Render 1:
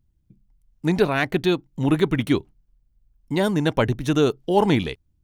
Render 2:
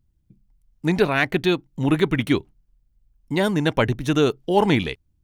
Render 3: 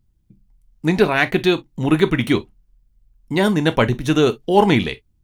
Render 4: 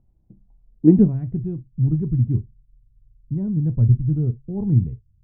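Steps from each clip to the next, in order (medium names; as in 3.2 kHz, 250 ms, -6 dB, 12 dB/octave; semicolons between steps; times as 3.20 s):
dynamic bell 2.2 kHz, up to +4 dB, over -36 dBFS, Q 1.1
gated-style reverb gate 80 ms falling, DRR 9.5 dB; trim +3 dB
low-pass sweep 710 Hz -> 120 Hz, 0.62–1.19 s; trim +1 dB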